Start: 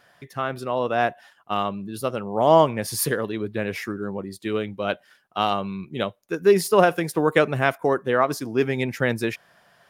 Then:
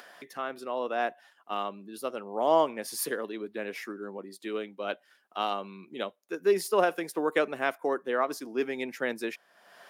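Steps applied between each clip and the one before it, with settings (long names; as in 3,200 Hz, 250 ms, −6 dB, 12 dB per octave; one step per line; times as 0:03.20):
high-pass filter 240 Hz 24 dB per octave
upward compression, threshold −32 dBFS
level −7.5 dB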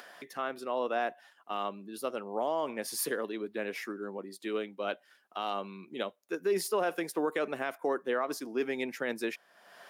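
brickwall limiter −21 dBFS, peak gain reduction 10.5 dB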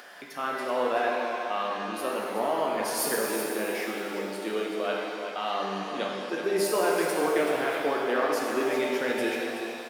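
single-tap delay 378 ms −9.5 dB
reverb with rising layers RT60 2.1 s, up +7 semitones, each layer −8 dB, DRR −2 dB
level +1.5 dB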